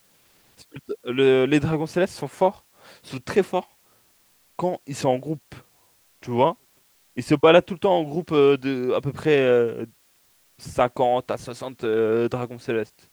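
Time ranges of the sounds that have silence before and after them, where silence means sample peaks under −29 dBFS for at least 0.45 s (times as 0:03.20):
0:00.76–0:02.51
0:03.11–0:03.61
0:04.59–0:05.52
0:06.23–0:06.52
0:07.18–0:09.84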